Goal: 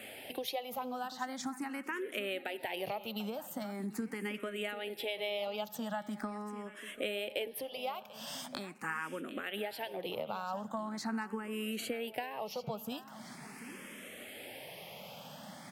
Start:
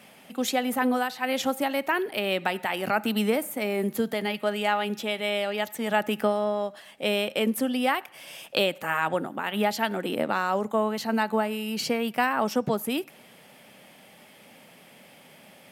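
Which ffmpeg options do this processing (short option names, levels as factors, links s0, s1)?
-filter_complex "[0:a]acompressor=threshold=0.0126:ratio=12,aecho=1:1:741|1482|2223|2964:0.168|0.0789|0.0371|0.0174,asplit=2[s0][s1];[s1]afreqshift=0.42[s2];[s0][s2]amix=inputs=2:normalize=1,volume=2"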